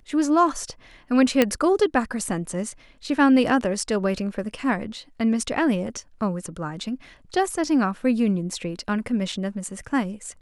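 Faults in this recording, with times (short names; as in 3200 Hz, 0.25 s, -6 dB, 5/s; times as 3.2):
1.42 pop -4 dBFS
9.32 gap 4 ms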